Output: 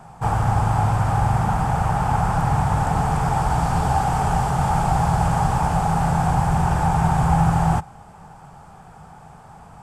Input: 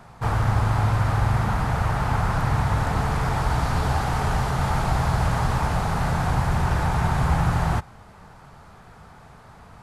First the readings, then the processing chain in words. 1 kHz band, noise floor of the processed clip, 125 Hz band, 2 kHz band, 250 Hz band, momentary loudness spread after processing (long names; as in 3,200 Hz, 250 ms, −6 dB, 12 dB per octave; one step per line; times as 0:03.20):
+6.0 dB, −44 dBFS, +2.0 dB, −1.5 dB, +4.5 dB, 3 LU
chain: thirty-one-band graphic EQ 160 Hz +8 dB, 800 Hz +10 dB, 2,000 Hz −5 dB, 4,000 Hz −7 dB, 8,000 Hz +8 dB